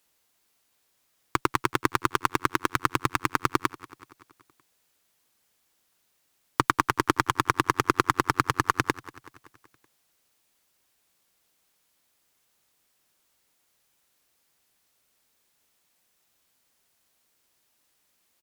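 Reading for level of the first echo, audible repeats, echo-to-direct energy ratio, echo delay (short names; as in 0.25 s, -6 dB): -19.0 dB, 4, -17.5 dB, 0.189 s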